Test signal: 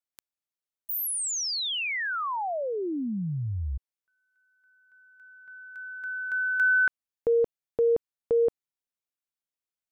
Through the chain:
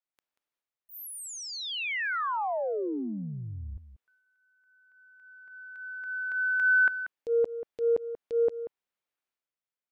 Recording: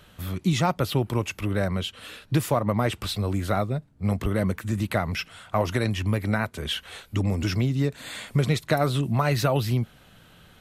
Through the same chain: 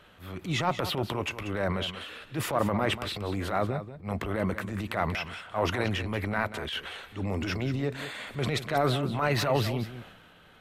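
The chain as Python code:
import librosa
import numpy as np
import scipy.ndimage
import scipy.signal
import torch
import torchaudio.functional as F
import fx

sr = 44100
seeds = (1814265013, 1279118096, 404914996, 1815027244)

y = fx.bass_treble(x, sr, bass_db=-8, treble_db=-11)
y = fx.transient(y, sr, attack_db=-11, sustain_db=7)
y = y + 10.0 ** (-12.0 / 20.0) * np.pad(y, (int(186 * sr / 1000.0), 0))[:len(y)]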